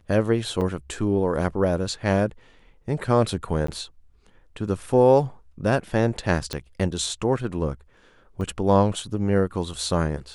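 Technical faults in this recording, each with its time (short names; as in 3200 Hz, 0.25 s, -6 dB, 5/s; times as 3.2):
0.61 gap 5 ms
3.67–3.68 gap 14 ms
6.53 pop -13 dBFS
8.41 gap 2.6 ms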